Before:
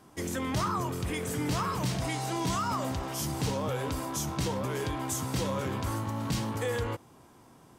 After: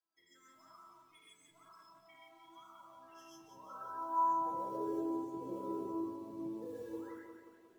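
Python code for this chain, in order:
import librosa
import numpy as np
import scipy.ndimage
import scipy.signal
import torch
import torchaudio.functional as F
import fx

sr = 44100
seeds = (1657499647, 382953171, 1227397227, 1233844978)

p1 = fx.spec_gate(x, sr, threshold_db=-15, keep='strong')
p2 = fx.dynamic_eq(p1, sr, hz=2400.0, q=2.1, threshold_db=-52.0, ratio=4.0, max_db=4)
p3 = fx.filter_sweep_bandpass(p2, sr, from_hz=5100.0, to_hz=420.0, start_s=2.52, end_s=4.85, q=4.6)
p4 = fx.spec_paint(p3, sr, seeds[0], shape='rise', start_s=6.92, length_s=0.2, low_hz=750.0, high_hz=2200.0, level_db=-59.0)
p5 = fx.quant_companded(p4, sr, bits=6)
p6 = p4 + (p5 * 10.0 ** (-3.0 / 20.0))
p7 = fx.comb_fb(p6, sr, f0_hz=330.0, decay_s=0.21, harmonics='all', damping=0.0, mix_pct=90)
p8 = fx.rev_gated(p7, sr, seeds[1], gate_ms=170, shape='rising', drr_db=-5.5)
p9 = fx.echo_crushed(p8, sr, ms=178, feedback_pct=55, bits=13, wet_db=-7.0)
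y = p9 * 10.0 ** (1.0 / 20.0)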